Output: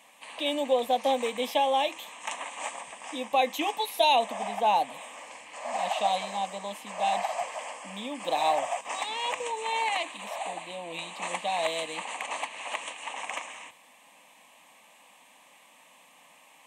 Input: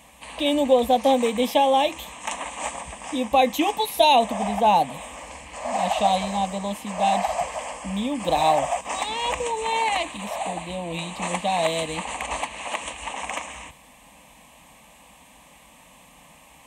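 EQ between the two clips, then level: HPF 310 Hz 12 dB/oct; bell 2200 Hz +4 dB 2.6 oct; -7.5 dB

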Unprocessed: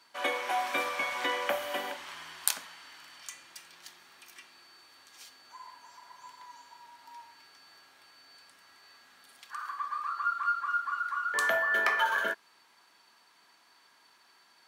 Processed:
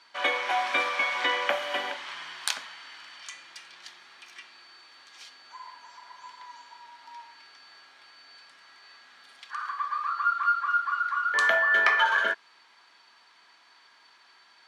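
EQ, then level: LPF 3700 Hz 12 dB/oct; tilt +2.5 dB/oct; notch 2700 Hz, Q 28; +4.0 dB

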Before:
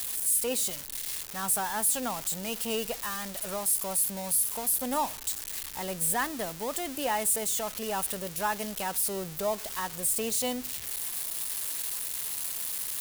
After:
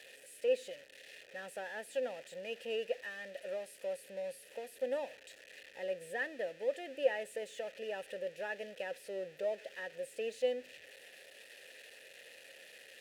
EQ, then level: vowel filter e; high shelf 7500 Hz -5.5 dB; +5.0 dB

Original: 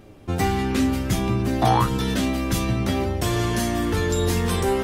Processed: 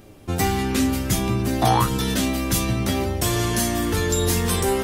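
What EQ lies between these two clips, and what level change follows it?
high shelf 5400 Hz +10 dB; 0.0 dB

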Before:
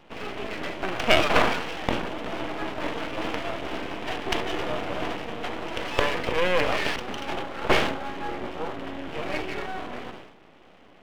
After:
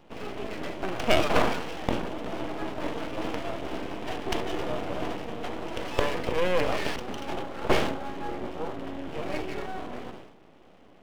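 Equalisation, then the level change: bell 2200 Hz -6.5 dB 2.5 oct; 0.0 dB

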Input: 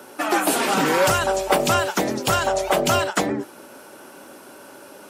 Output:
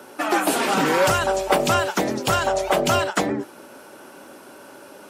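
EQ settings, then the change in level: high shelf 6600 Hz -4 dB; 0.0 dB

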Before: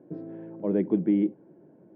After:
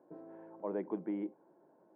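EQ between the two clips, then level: band-pass 1000 Hz, Q 2.2; +2.5 dB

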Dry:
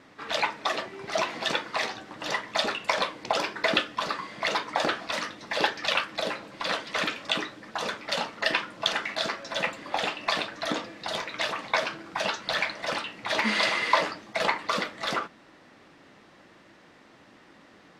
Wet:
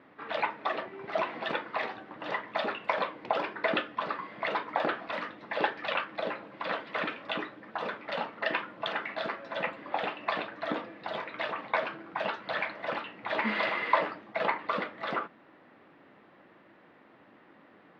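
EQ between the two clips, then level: HPF 210 Hz 6 dB/oct; air absorption 470 m; 0.0 dB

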